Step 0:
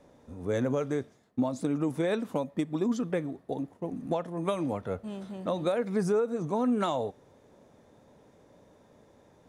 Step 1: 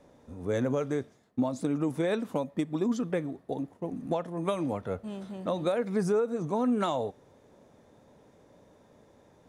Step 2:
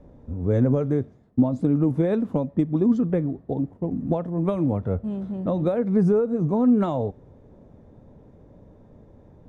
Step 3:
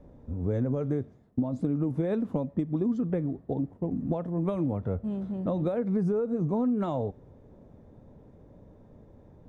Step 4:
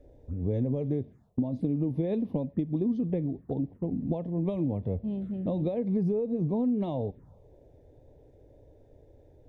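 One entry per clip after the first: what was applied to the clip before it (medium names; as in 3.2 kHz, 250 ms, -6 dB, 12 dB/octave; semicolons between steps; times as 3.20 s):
no audible change
tilt EQ -4.5 dB/octave
compression 5:1, threshold -21 dBFS, peak gain reduction 7.5 dB; trim -3 dB
touch-sensitive phaser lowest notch 160 Hz, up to 1.4 kHz, full sweep at -28.5 dBFS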